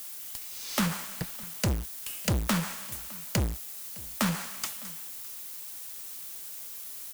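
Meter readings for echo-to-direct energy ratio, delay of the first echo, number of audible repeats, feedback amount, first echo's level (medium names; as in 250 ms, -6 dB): -22.5 dB, 609 ms, 1, no regular repeats, -22.5 dB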